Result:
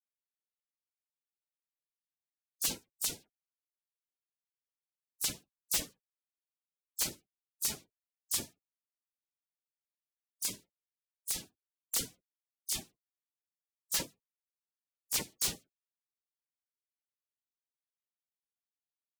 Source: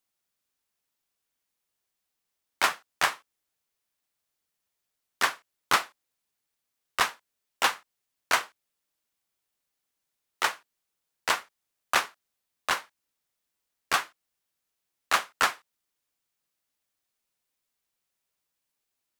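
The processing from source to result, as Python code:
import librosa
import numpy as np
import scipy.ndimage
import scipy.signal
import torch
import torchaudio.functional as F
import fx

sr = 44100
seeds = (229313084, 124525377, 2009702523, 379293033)

y = fx.spec_gate(x, sr, threshold_db=-20, keep='weak')
y = fx.dispersion(y, sr, late='lows', ms=62.0, hz=2600.0)
y = (np.mod(10.0 ** (26.0 / 20.0) * y + 1.0, 2.0) - 1.0) / 10.0 ** (26.0 / 20.0)
y = y * librosa.db_to_amplitude(5.0)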